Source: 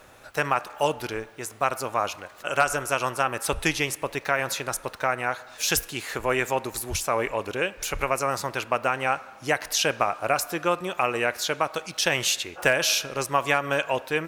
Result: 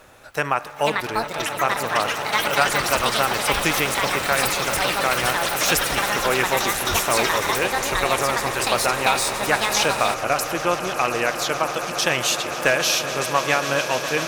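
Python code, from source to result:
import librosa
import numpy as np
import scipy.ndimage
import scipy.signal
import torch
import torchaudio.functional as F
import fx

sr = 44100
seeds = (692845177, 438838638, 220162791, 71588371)

y = fx.echo_swell(x, sr, ms=138, loudest=8, wet_db=-15.5)
y = fx.echo_pitch(y, sr, ms=615, semitones=7, count=3, db_per_echo=-3.0)
y = y * 10.0 ** (2.0 / 20.0)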